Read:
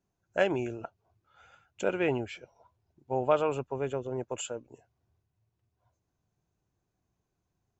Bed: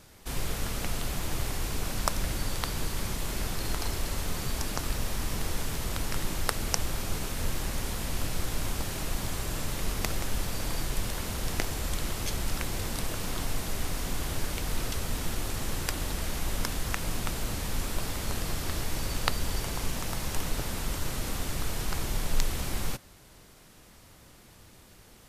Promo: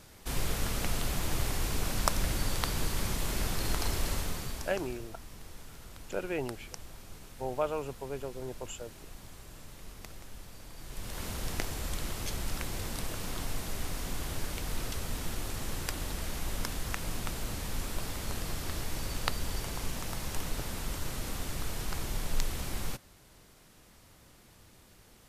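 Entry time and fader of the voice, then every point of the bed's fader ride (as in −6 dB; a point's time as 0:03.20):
4.30 s, −6.0 dB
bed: 0:04.12 0 dB
0:05.12 −16.5 dB
0:10.75 −16.5 dB
0:11.23 −4 dB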